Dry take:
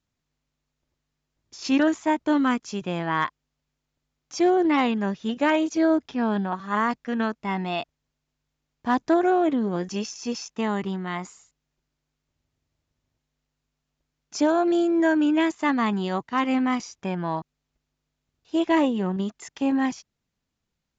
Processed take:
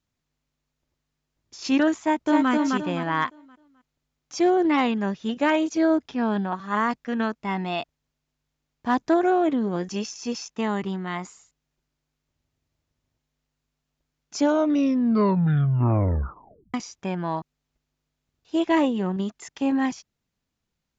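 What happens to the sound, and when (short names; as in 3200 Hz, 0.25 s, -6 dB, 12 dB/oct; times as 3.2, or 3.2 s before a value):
2–2.51 echo throw 0.26 s, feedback 35%, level -2.5 dB
14.37 tape stop 2.37 s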